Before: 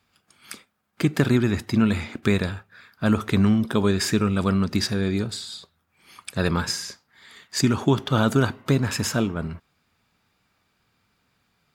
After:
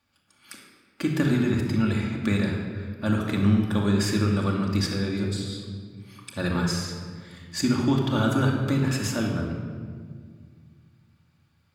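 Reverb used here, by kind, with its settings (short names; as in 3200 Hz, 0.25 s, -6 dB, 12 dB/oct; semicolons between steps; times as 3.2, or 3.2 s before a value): shoebox room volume 2700 m³, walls mixed, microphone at 2.4 m; gain -6.5 dB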